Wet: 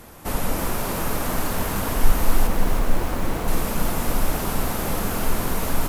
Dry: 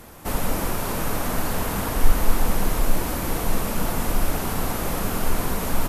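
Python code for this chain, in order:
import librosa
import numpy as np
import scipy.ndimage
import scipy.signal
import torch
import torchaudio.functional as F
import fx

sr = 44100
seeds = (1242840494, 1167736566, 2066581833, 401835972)

y = fx.high_shelf(x, sr, hz=4800.0, db=-11.0, at=(2.47, 3.48))
y = fx.echo_crushed(y, sr, ms=315, feedback_pct=55, bits=6, wet_db=-8.0)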